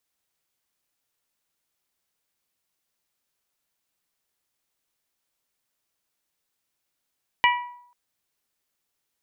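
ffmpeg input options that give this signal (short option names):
-f lavfi -i "aevalsrc='0.168*pow(10,-3*t/0.67)*sin(2*PI*974*t)+0.133*pow(10,-3*t/0.412)*sin(2*PI*1948*t)+0.106*pow(10,-3*t/0.363)*sin(2*PI*2337.6*t)+0.0841*pow(10,-3*t/0.311)*sin(2*PI*2922*t)':d=0.49:s=44100"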